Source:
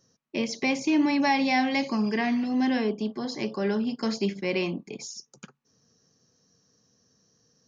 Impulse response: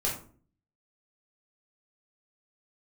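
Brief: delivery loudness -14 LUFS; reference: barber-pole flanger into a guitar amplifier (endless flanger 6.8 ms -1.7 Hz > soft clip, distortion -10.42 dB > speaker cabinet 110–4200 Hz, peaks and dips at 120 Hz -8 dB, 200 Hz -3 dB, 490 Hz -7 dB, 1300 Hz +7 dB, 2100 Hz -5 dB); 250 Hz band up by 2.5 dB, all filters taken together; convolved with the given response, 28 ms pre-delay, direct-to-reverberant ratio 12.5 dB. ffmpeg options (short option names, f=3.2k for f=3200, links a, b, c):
-filter_complex "[0:a]equalizer=f=250:t=o:g=4.5,asplit=2[a][b];[1:a]atrim=start_sample=2205,adelay=28[c];[b][c]afir=irnorm=-1:irlink=0,volume=-19dB[d];[a][d]amix=inputs=2:normalize=0,asplit=2[e][f];[f]adelay=6.8,afreqshift=-1.7[g];[e][g]amix=inputs=2:normalize=1,asoftclip=threshold=-24dB,highpass=110,equalizer=f=120:t=q:w=4:g=-8,equalizer=f=200:t=q:w=4:g=-3,equalizer=f=490:t=q:w=4:g=-7,equalizer=f=1.3k:t=q:w=4:g=7,equalizer=f=2.1k:t=q:w=4:g=-5,lowpass=f=4.2k:w=0.5412,lowpass=f=4.2k:w=1.3066,volume=18dB"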